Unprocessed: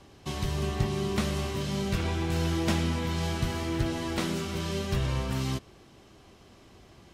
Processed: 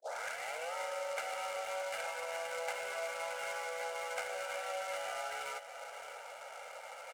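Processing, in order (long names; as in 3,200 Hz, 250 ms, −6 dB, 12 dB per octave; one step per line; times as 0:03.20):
turntable start at the beginning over 0.75 s
spectral tilt +2.5 dB per octave
single-sideband voice off tune +170 Hz 310–2,400 Hz
downward compressor 4 to 1, threshold −51 dBFS, peak gain reduction 18.5 dB
comb filter 1.4 ms, depth 94%
single-tap delay 624 ms −10.5 dB
short delay modulated by noise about 5,400 Hz, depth 0.031 ms
level +8 dB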